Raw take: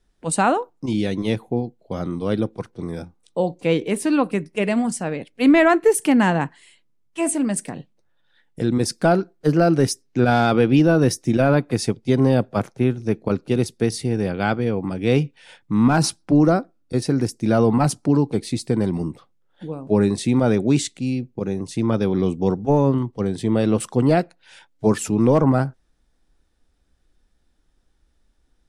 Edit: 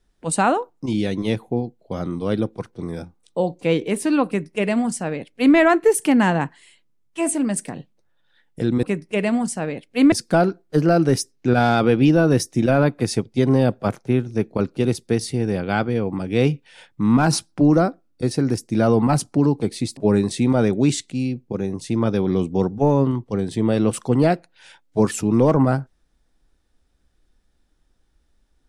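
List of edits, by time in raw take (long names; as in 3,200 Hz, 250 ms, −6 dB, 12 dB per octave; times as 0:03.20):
0:04.27–0:05.56: duplicate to 0:08.83
0:18.68–0:19.84: remove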